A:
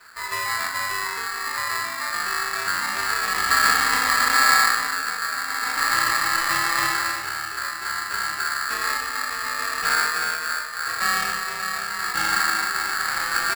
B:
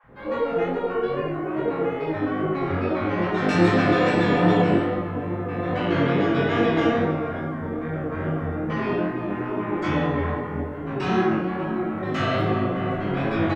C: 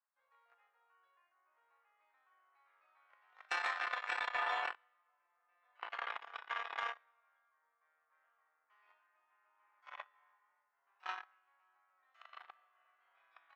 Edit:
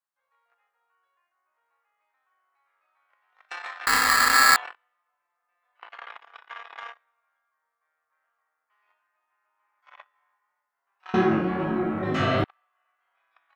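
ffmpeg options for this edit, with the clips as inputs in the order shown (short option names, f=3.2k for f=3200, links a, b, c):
-filter_complex "[2:a]asplit=3[a][b][c];[a]atrim=end=3.872[d];[0:a]atrim=start=3.868:end=4.562[e];[b]atrim=start=4.558:end=11.142[f];[1:a]atrim=start=11.138:end=12.442[g];[c]atrim=start=12.438[h];[d][e]acrossfade=d=0.004:c1=hsin:c2=hsin[i];[i][f]acrossfade=d=0.004:c1=hsin:c2=hsin[j];[j][g]acrossfade=d=0.004:c1=hsin:c2=hsin[k];[k][h]acrossfade=d=0.004:c1=hsin:c2=hsin"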